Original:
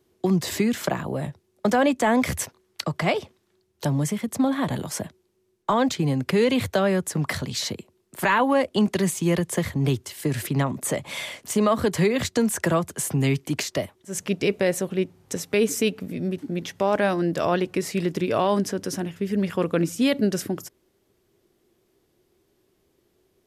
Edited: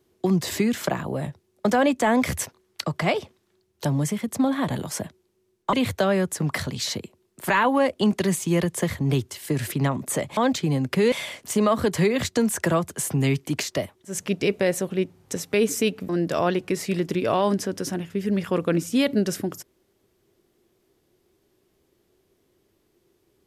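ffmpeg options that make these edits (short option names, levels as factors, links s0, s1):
-filter_complex "[0:a]asplit=5[s0][s1][s2][s3][s4];[s0]atrim=end=5.732[s5];[s1]atrim=start=6.478:end=11.122[s6];[s2]atrim=start=5.728:end=6.482[s7];[s3]atrim=start=11.118:end=16.092[s8];[s4]atrim=start=17.148[s9];[s5][s6]acrossfade=d=0.004:c1=hsin:c2=hsin[s10];[s10][s7]acrossfade=d=0.004:c1=hsin:c2=hsin[s11];[s11][s8]acrossfade=d=0.004:c1=hsin:c2=hsin[s12];[s12][s9]acrossfade=d=0.004:c1=hsin:c2=hsin"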